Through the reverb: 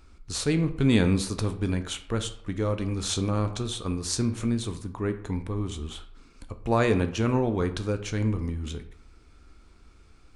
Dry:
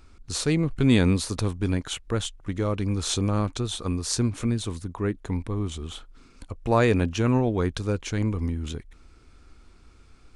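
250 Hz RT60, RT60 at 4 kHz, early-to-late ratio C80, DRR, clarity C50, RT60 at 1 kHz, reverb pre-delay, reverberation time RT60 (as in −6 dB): 0.65 s, 0.40 s, 15.5 dB, 8.0 dB, 12.5 dB, 0.70 s, 8 ms, 0.70 s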